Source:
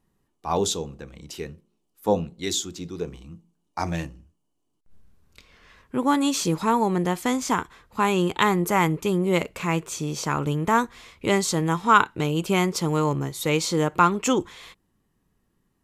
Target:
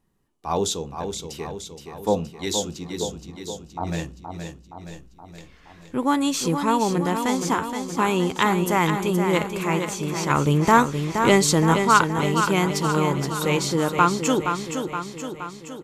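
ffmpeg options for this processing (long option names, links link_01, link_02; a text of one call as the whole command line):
ffmpeg -i in.wav -filter_complex "[0:a]asettb=1/sr,asplit=3[link_01][link_02][link_03];[link_01]atrim=end=2.914[link_04];[link_02]atrim=start=2.91:end=3.87,asetpts=PTS-STARTPTS,afade=type=in:duration=0.004:curve=qsin,afade=type=out:start_time=0.956:duration=0.004:curve=qsin,lowpass=frequency=1000:width=0.5412,lowpass=frequency=1000:width=1.3066[link_05];[link_03]atrim=start=3.866[link_06];[link_04][link_05]acrossfade=duration=0.004:curve1=hsin:curve2=qsin[link_07];[link_07][link_06]acrossfade=duration=0.004:curve1=qsin:curve2=hsin,asettb=1/sr,asplit=3[link_08][link_09][link_10];[link_08]atrim=end=10.304[link_11];[link_09]atrim=start=10.3:end=11.74,asetpts=PTS-STARTPTS,afade=type=in:duration=0.004:curve=qsin,afade=type=out:start_time=1.436:duration=0.004:curve=qsin,acontrast=32[link_12];[link_10]atrim=start=11.736[link_13];[link_11][link_12]acrossfade=duration=0.004:curve1=hsin:curve2=qsin[link_14];[link_14][link_13]acrossfade=duration=0.004:curve1=qsin:curve2=hsin,aecho=1:1:471|942|1413|1884|2355|2826|3297|3768:0.447|0.264|0.155|0.0917|0.0541|0.0319|0.0188|0.0111" out.wav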